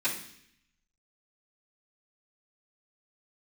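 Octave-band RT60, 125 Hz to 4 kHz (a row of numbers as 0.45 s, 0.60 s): 1.0 s, 0.90 s, 0.70 s, 0.65 s, 0.85 s, 0.80 s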